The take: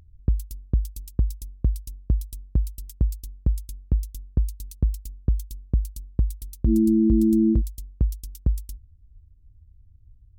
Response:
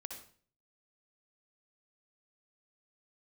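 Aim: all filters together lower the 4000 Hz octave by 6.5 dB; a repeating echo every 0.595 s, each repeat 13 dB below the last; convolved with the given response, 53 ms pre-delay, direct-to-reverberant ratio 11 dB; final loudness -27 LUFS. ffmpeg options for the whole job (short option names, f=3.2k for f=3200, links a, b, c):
-filter_complex "[0:a]equalizer=f=4k:t=o:g=-9,aecho=1:1:595|1190|1785:0.224|0.0493|0.0108,asplit=2[a][b];[1:a]atrim=start_sample=2205,adelay=53[c];[b][c]afir=irnorm=-1:irlink=0,volume=-8dB[d];[a][d]amix=inputs=2:normalize=0,volume=-0.5dB"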